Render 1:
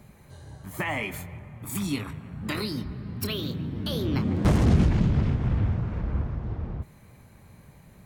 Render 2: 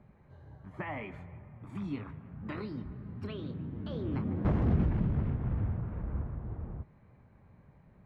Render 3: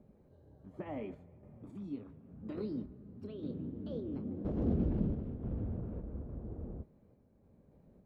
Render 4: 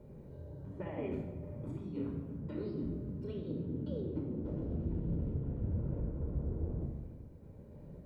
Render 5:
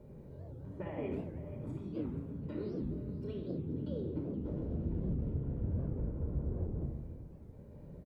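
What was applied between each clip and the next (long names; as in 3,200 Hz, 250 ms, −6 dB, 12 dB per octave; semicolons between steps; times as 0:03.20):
low-pass filter 1,700 Hz 12 dB per octave; level −7.5 dB
octave-band graphic EQ 125/250/500/1,000/2,000 Hz −5/+6/+7/−7/−11 dB; sample-and-hold tremolo; level −3 dB
reversed playback; downward compressor 10 to 1, threshold −45 dBFS, peak gain reduction 18.5 dB; reversed playback; rectangular room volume 3,800 cubic metres, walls furnished, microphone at 4.7 metres; level +5 dB
single-tap delay 481 ms −16 dB; wow of a warped record 78 rpm, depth 250 cents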